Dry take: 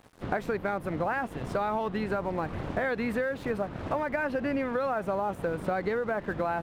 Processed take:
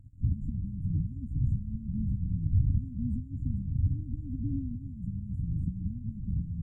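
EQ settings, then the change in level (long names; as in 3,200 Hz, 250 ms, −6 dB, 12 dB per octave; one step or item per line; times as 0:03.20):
linear-phase brick-wall band-stop 300–6,700 Hz
head-to-tape spacing loss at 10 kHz 25 dB
low shelf with overshoot 150 Hz +13 dB, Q 1.5
0.0 dB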